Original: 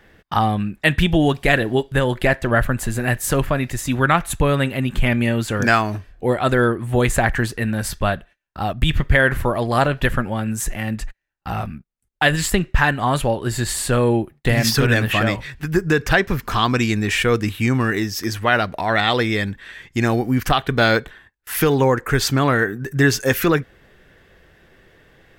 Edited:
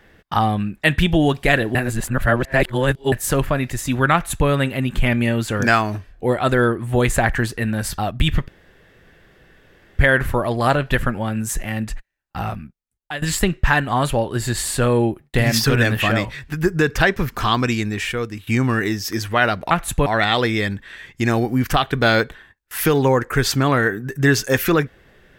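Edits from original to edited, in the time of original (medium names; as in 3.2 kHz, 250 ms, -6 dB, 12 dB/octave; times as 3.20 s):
1.75–3.12 s: reverse
4.13–4.48 s: copy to 18.82 s
7.98–8.60 s: delete
9.10 s: insert room tone 1.51 s
11.51–12.33 s: fade out linear, to -15.5 dB
16.62–17.58 s: fade out, to -12.5 dB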